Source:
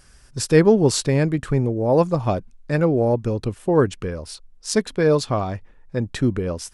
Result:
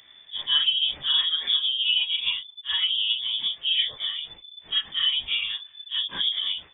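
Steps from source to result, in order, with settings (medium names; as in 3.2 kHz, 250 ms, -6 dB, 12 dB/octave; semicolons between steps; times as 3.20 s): phase randomisation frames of 100 ms; 1.09–1.93 s: comb 5.8 ms, depth 89%; compression 2:1, threshold -27 dBFS, peak gain reduction 11 dB; frequency inversion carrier 3.5 kHz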